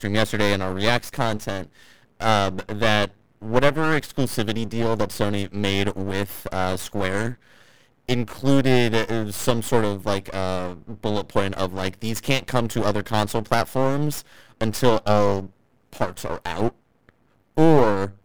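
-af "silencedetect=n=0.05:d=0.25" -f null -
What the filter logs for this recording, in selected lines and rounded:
silence_start: 1.63
silence_end: 2.20 | silence_duration: 0.58
silence_start: 3.07
silence_end: 3.43 | silence_duration: 0.36
silence_start: 7.33
silence_end: 8.09 | silence_duration: 0.76
silence_start: 14.20
silence_end: 14.61 | silence_duration: 0.41
silence_start: 15.45
silence_end: 15.93 | silence_duration: 0.48
silence_start: 16.69
silence_end: 17.57 | silence_duration: 0.88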